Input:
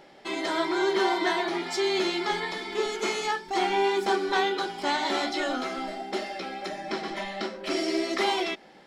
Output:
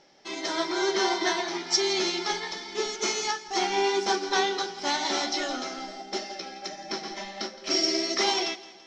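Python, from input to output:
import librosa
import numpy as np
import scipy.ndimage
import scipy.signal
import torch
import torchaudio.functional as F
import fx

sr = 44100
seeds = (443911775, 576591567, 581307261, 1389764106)

p1 = fx.lowpass_res(x, sr, hz=5800.0, q=6.7)
p2 = p1 + fx.echo_feedback(p1, sr, ms=167, feedback_pct=52, wet_db=-13.0, dry=0)
y = fx.upward_expand(p2, sr, threshold_db=-36.0, expansion=1.5)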